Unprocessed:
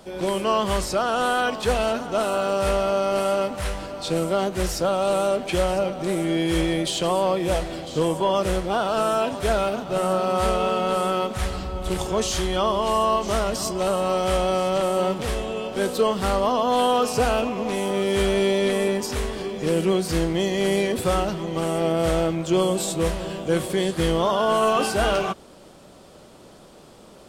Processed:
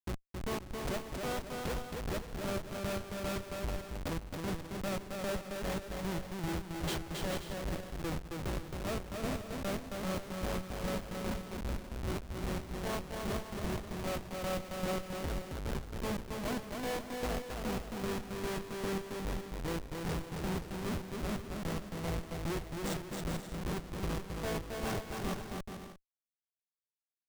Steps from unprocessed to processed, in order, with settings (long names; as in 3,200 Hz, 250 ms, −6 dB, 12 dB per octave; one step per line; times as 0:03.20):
drawn EQ curve 110 Hz 0 dB, 1,500 Hz −10 dB, 9,100 Hz −6 dB
granular cloud 218 ms, grains 2.5 per second, spray 30 ms, pitch spread up and down by 0 semitones
high-pass filter 48 Hz 12 dB per octave
comparator with hysteresis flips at −35 dBFS
on a send: bouncing-ball delay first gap 270 ms, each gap 0.6×, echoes 5